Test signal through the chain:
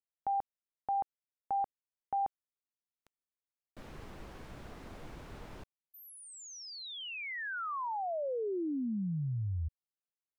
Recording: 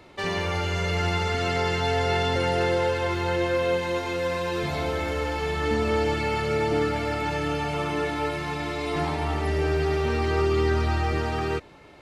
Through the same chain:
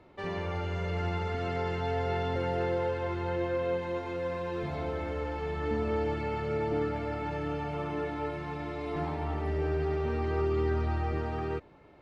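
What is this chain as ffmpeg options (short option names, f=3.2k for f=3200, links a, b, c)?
-af "lowpass=f=1.2k:p=1,volume=-5.5dB"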